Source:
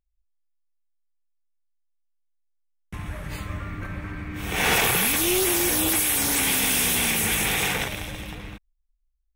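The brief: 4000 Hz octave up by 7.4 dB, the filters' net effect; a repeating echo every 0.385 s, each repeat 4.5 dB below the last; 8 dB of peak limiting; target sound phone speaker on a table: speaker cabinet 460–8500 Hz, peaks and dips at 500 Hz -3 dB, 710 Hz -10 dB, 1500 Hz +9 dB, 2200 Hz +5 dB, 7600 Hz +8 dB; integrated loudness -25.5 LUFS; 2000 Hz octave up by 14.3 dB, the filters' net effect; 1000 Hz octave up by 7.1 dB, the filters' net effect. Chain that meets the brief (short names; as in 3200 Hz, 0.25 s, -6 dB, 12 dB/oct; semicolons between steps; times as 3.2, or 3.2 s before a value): bell 1000 Hz +5.5 dB; bell 2000 Hz +8.5 dB; bell 4000 Hz +5 dB; limiter -12.5 dBFS; speaker cabinet 460–8500 Hz, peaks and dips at 500 Hz -3 dB, 710 Hz -10 dB, 1500 Hz +9 dB, 2200 Hz +5 dB, 7600 Hz +8 dB; feedback echo 0.385 s, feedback 60%, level -4.5 dB; gain -9 dB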